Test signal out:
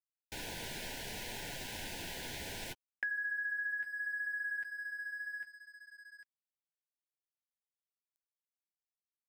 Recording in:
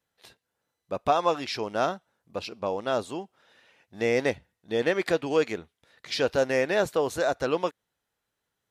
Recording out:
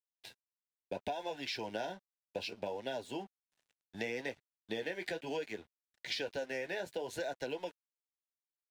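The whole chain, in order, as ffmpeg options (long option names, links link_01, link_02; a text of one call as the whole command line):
ffmpeg -i in.wav -filter_complex "[0:a]acrossover=split=170|3600[link_01][link_02][link_03];[link_02]crystalizer=i=4.5:c=0[link_04];[link_01][link_04][link_03]amix=inputs=3:normalize=0,flanger=delay=6.7:depth=6.5:regen=-40:speed=0.68:shape=triangular,asuperstop=centerf=1200:order=20:qfactor=2.9,agate=range=-33dB:threshold=-53dB:ratio=3:detection=peak,acrossover=split=170|3000[link_05][link_06][link_07];[link_05]acompressor=threshold=-52dB:ratio=2[link_08];[link_08][link_06][link_07]amix=inputs=3:normalize=0,asplit=2[link_09][link_10];[link_10]asoftclip=type=tanh:threshold=-30.5dB,volume=-10dB[link_11];[link_09][link_11]amix=inputs=2:normalize=0,acompressor=threshold=-35dB:ratio=10,aeval=exprs='sgn(val(0))*max(abs(val(0))-0.00112,0)':channel_layout=same" out.wav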